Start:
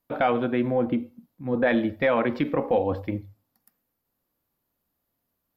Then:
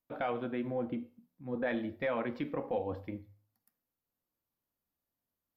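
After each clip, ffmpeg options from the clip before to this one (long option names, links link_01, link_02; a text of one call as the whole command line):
ffmpeg -i in.wav -af "flanger=delay=9.1:depth=5.4:regen=-80:speed=0.45:shape=sinusoidal,volume=-7dB" out.wav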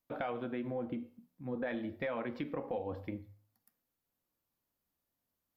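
ffmpeg -i in.wav -af "acompressor=threshold=-39dB:ratio=2.5,volume=2.5dB" out.wav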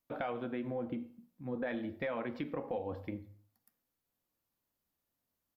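ffmpeg -i in.wav -filter_complex "[0:a]asplit=2[link_01][link_02];[link_02]adelay=88,lowpass=frequency=2000:poles=1,volume=-23dB,asplit=2[link_03][link_04];[link_04]adelay=88,lowpass=frequency=2000:poles=1,volume=0.48,asplit=2[link_05][link_06];[link_06]adelay=88,lowpass=frequency=2000:poles=1,volume=0.48[link_07];[link_01][link_03][link_05][link_07]amix=inputs=4:normalize=0" out.wav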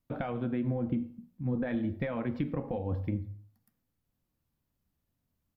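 ffmpeg -i in.wav -af "bass=frequency=250:gain=15,treble=frequency=4000:gain=-3" out.wav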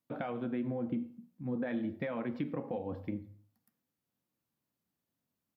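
ffmpeg -i in.wav -af "highpass=180,volume=-2dB" out.wav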